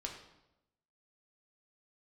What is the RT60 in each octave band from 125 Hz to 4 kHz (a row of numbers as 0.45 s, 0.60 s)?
1.1 s, 1.0 s, 0.95 s, 0.85 s, 0.75 s, 0.70 s